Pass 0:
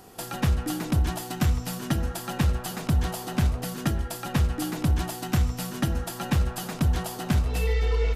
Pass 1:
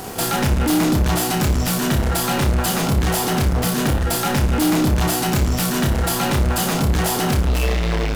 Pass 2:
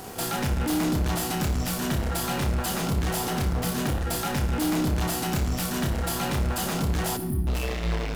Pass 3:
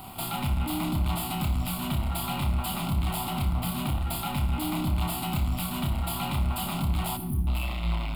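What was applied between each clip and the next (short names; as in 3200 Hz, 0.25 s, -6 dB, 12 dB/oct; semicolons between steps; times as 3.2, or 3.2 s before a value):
sample leveller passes 5; on a send: flutter echo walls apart 5 m, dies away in 0.27 s
spectral delete 7.17–7.47, 400–8800 Hz; on a send at -13 dB: reverb RT60 1.2 s, pre-delay 63 ms; on the sum: gain -8 dB
fixed phaser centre 1700 Hz, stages 6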